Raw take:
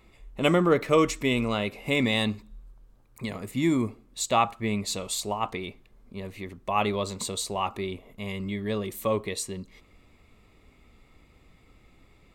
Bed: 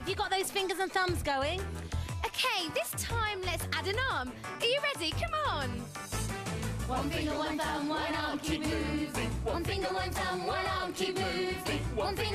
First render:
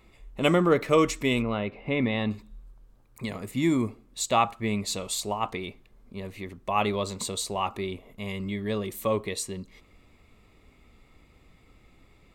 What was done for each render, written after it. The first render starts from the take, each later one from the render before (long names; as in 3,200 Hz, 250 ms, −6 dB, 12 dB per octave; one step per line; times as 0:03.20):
0:01.42–0:02.31: high-frequency loss of the air 390 metres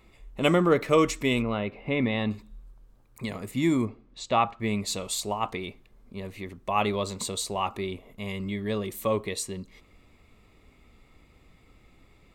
0:03.85–0:04.60: high-frequency loss of the air 150 metres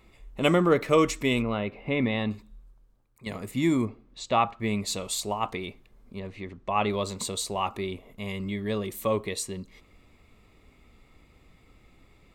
0:02.13–0:03.26: fade out, to −14 dB
0:06.19–0:06.90: high-frequency loss of the air 98 metres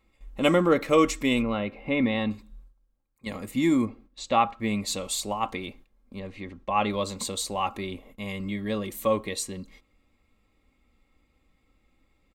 noise gate −50 dBFS, range −11 dB
comb filter 3.7 ms, depth 45%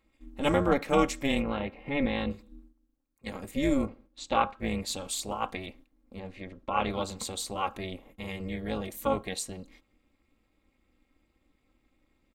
amplitude modulation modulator 280 Hz, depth 80%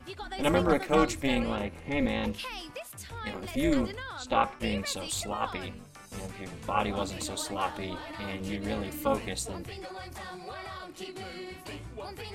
mix in bed −8.5 dB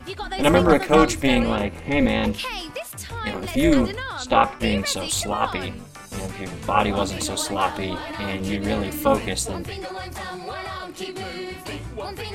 level +9 dB
brickwall limiter −2 dBFS, peak gain reduction 1 dB